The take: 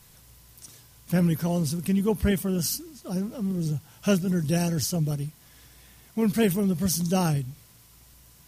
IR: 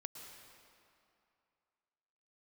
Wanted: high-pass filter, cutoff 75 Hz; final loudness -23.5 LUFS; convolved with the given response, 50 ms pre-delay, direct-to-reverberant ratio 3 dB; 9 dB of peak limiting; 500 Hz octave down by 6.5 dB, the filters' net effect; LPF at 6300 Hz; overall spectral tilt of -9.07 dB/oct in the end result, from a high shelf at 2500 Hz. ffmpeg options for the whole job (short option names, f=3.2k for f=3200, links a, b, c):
-filter_complex "[0:a]highpass=75,lowpass=6.3k,equalizer=f=500:t=o:g=-8,highshelf=f=2.5k:g=-8.5,alimiter=limit=-23dB:level=0:latency=1,asplit=2[a][b];[1:a]atrim=start_sample=2205,adelay=50[c];[b][c]afir=irnorm=-1:irlink=0,volume=0.5dB[d];[a][d]amix=inputs=2:normalize=0,volume=6dB"